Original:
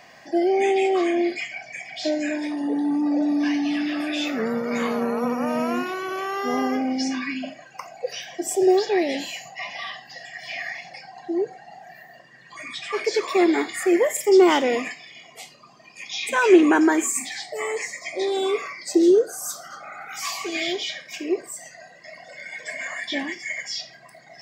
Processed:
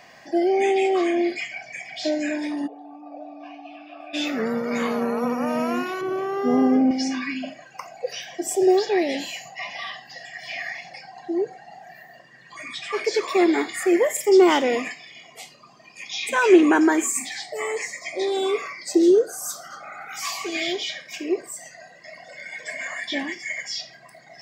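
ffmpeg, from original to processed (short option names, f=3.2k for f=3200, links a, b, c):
-filter_complex "[0:a]asplit=3[a][b][c];[a]afade=t=out:st=2.66:d=0.02[d];[b]asplit=3[e][f][g];[e]bandpass=f=730:t=q:w=8,volume=0dB[h];[f]bandpass=f=1.09k:t=q:w=8,volume=-6dB[i];[g]bandpass=f=2.44k:t=q:w=8,volume=-9dB[j];[h][i][j]amix=inputs=3:normalize=0,afade=t=in:st=2.66:d=0.02,afade=t=out:st=4.13:d=0.02[k];[c]afade=t=in:st=4.13:d=0.02[l];[d][k][l]amix=inputs=3:normalize=0,asettb=1/sr,asplit=3[m][n][o];[m]atrim=end=6.014[p];[n]atrim=start=6.01:end=6.91,asetpts=PTS-STARTPTS,afade=t=in:d=0.004:c=qsin,afade=t=out:st=0.896:d=0.004:c=qsin,tiltshelf=f=770:g=9.5[q];[o]atrim=start=6.906[r];[p][q]acrossfade=d=0.004:c1=hsin:c2=qsin[s];[s][r]acrossfade=d=0.004:c1=qsin:c2=hsin"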